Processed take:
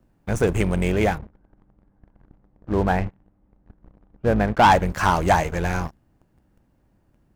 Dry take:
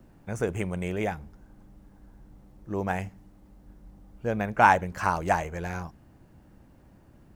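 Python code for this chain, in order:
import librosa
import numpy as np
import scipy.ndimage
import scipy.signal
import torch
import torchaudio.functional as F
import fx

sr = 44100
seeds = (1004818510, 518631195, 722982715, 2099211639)

y = fx.octave_divider(x, sr, octaves=2, level_db=-5.0)
y = fx.lowpass(y, sr, hz=1900.0, slope=12, at=(1.18, 4.71))
y = fx.leveller(y, sr, passes=3)
y = y * librosa.db_to_amplitude(-2.5)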